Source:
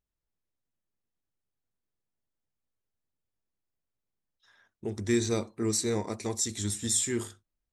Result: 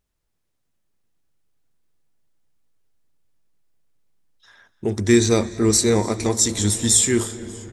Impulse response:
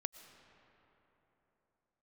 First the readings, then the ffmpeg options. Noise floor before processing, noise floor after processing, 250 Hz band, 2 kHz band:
under -85 dBFS, -73 dBFS, +11.5 dB, +11.5 dB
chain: -filter_complex "[0:a]asplit=6[a][b][c][d][e][f];[b]adelay=295,afreqshift=-150,volume=-23dB[g];[c]adelay=590,afreqshift=-300,volume=-26.9dB[h];[d]adelay=885,afreqshift=-450,volume=-30.8dB[i];[e]adelay=1180,afreqshift=-600,volume=-34.6dB[j];[f]adelay=1475,afreqshift=-750,volume=-38.5dB[k];[a][g][h][i][j][k]amix=inputs=6:normalize=0,asplit=2[l][m];[1:a]atrim=start_sample=2205,asetrate=23373,aresample=44100[n];[m][n]afir=irnorm=-1:irlink=0,volume=-3.5dB[o];[l][o]amix=inputs=2:normalize=0,volume=6.5dB"

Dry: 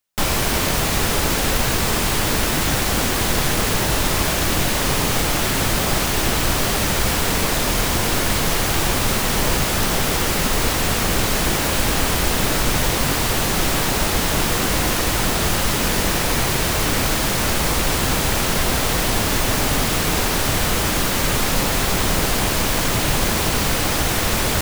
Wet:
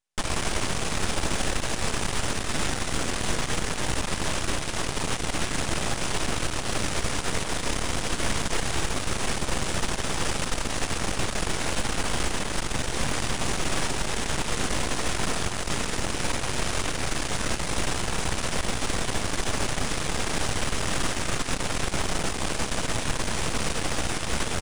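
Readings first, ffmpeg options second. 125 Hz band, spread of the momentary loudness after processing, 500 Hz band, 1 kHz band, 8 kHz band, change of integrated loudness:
-9.0 dB, 1 LU, -8.5 dB, -8.5 dB, -8.5 dB, -9.5 dB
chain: -af "equalizer=f=4.3k:t=o:w=0.23:g=-3,alimiter=limit=-11dB:level=0:latency=1:release=180,aeval=exprs='max(val(0),0)':c=same,aresample=22050,aresample=44100,aecho=1:1:314:0.376,acrusher=bits=7:mode=log:mix=0:aa=0.000001,volume=-2dB"

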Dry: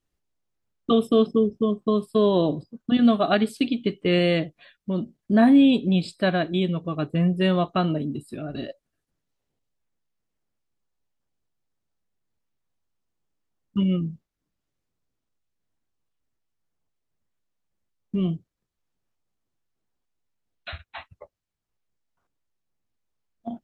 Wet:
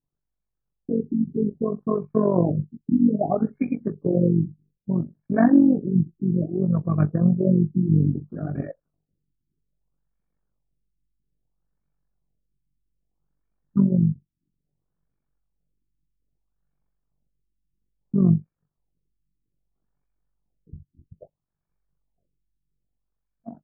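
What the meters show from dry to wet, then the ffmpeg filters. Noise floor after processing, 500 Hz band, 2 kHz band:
-82 dBFS, -3.0 dB, -10.5 dB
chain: -af "equalizer=f=150:t=o:w=0.39:g=12.5,dynaudnorm=f=430:g=5:m=7.5dB,flanger=delay=6.9:depth=5.1:regen=-24:speed=1.5:shape=sinusoidal,tremolo=f=47:d=0.75,asuperstop=centerf=2000:order=4:qfactor=7,afftfilt=real='re*lt(b*sr/1024,370*pow(2500/370,0.5+0.5*sin(2*PI*0.61*pts/sr)))':imag='im*lt(b*sr/1024,370*pow(2500/370,0.5+0.5*sin(2*PI*0.61*pts/sr)))':win_size=1024:overlap=0.75"

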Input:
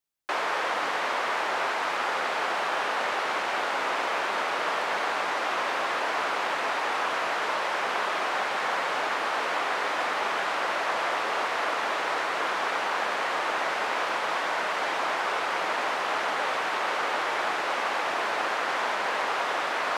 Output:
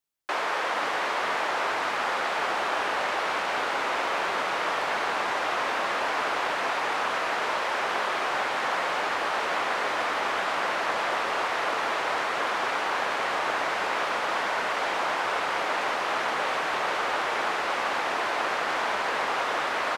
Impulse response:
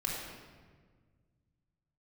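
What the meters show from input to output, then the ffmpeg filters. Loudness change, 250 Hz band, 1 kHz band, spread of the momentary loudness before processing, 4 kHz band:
+0.5 dB, +1.5 dB, +0.5 dB, 0 LU, +0.5 dB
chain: -filter_complex "[0:a]asplit=5[a][b][c][d][e];[b]adelay=476,afreqshift=-100,volume=-10dB[f];[c]adelay=952,afreqshift=-200,volume=-18.2dB[g];[d]adelay=1428,afreqshift=-300,volume=-26.4dB[h];[e]adelay=1904,afreqshift=-400,volume=-34.5dB[i];[a][f][g][h][i]amix=inputs=5:normalize=0"

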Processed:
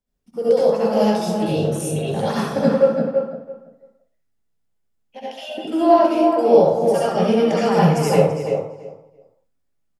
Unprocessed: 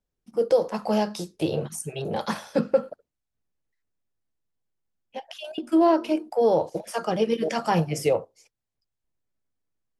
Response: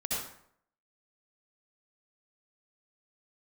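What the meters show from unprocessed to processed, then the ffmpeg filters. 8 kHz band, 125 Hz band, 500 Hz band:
n/a, +10.0 dB, +8.0 dB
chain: -filter_complex "[0:a]asplit=2[a][b];[b]adelay=334,lowpass=f=2.1k:p=1,volume=-5dB,asplit=2[c][d];[d]adelay=334,lowpass=f=2.1k:p=1,volume=0.19,asplit=2[e][f];[f]adelay=334,lowpass=f=2.1k:p=1,volume=0.19[g];[a][c][e][g]amix=inputs=4:normalize=0[h];[1:a]atrim=start_sample=2205,afade=t=out:st=0.33:d=0.01,atrim=end_sample=14994[i];[h][i]afir=irnorm=-1:irlink=0"

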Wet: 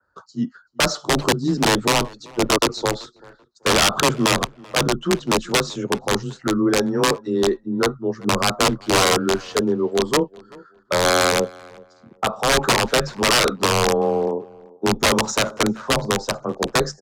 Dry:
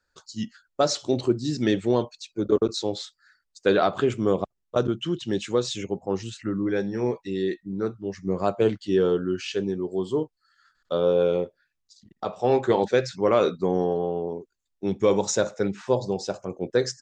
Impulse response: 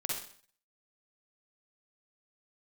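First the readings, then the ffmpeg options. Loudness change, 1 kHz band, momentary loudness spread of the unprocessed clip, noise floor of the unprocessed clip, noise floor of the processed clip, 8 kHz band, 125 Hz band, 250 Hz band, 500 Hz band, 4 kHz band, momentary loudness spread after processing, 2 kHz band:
+5.5 dB, +9.5 dB, 11 LU, -78 dBFS, -55 dBFS, +13.5 dB, +4.5 dB, +4.0 dB, +2.0 dB, +13.5 dB, 9 LU, +14.5 dB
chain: -filter_complex "[0:a]highpass=f=67:p=1,highshelf=f=1.7k:t=q:w=3:g=-10.5,acrossover=split=300|1100[a][b][c];[b]alimiter=limit=-20dB:level=0:latency=1:release=309[d];[a][d][c]amix=inputs=3:normalize=0,aeval=exprs='(mod(7.5*val(0)+1,2)-1)/7.5':c=same,afreqshift=19,aeval=exprs='0.141*(abs(mod(val(0)/0.141+3,4)-2)-1)':c=same,adynamicsmooth=sensitivity=1.5:basefreq=6.5k,asplit=2[e][f];[f]adelay=385,lowpass=f=2.4k:p=1,volume=-23dB,asplit=2[g][h];[h]adelay=385,lowpass=f=2.4k:p=1,volume=0.25[i];[g][i]amix=inputs=2:normalize=0[j];[e][j]amix=inputs=2:normalize=0,adynamicequalizer=threshold=0.00631:dfrequency=2800:dqfactor=0.7:tfrequency=2800:tqfactor=0.7:attack=5:release=100:ratio=0.375:range=4:mode=boostabove:tftype=highshelf,volume=7.5dB"

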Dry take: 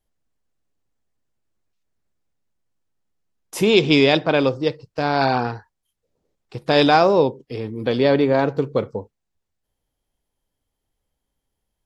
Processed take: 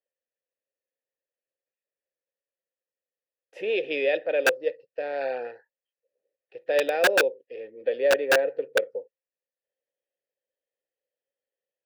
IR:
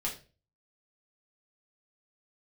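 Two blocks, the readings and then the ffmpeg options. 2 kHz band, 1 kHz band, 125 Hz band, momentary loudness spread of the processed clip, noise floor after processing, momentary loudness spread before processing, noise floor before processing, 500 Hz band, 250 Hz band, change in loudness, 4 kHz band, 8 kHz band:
-1.0 dB, -12.5 dB, under -30 dB, 15 LU, under -85 dBFS, 17 LU, -79 dBFS, -5.5 dB, -20.0 dB, -7.0 dB, -10.0 dB, n/a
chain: -filter_complex "[0:a]asplit=3[a][b][c];[a]bandpass=f=530:t=q:w=8,volume=0dB[d];[b]bandpass=f=1.84k:t=q:w=8,volume=-6dB[e];[c]bandpass=f=2.48k:t=q:w=8,volume=-9dB[f];[d][e][f]amix=inputs=3:normalize=0,aeval=exprs='(mod(5.62*val(0)+1,2)-1)/5.62':c=same,bass=f=250:g=-14,treble=f=4k:g=-8,volume=2.5dB"

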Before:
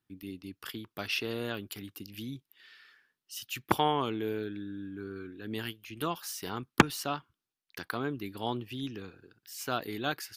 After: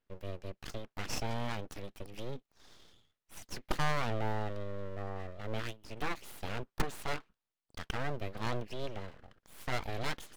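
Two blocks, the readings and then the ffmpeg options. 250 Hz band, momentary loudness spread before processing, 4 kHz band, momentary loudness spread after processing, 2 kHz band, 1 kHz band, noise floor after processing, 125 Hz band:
-8.5 dB, 16 LU, -6.5 dB, 12 LU, -4.5 dB, -5.5 dB, under -85 dBFS, +0.5 dB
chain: -af "aemphasis=mode=reproduction:type=75kf,aeval=exprs='(tanh(20*val(0)+0.45)-tanh(0.45))/20':c=same,aeval=exprs='abs(val(0))':c=same,volume=4.5dB"

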